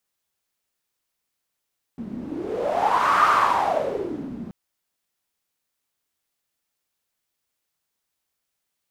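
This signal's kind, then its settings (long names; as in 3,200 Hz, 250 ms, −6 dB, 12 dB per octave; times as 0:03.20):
wind from filtered noise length 2.53 s, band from 220 Hz, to 1,200 Hz, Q 7, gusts 1, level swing 15.5 dB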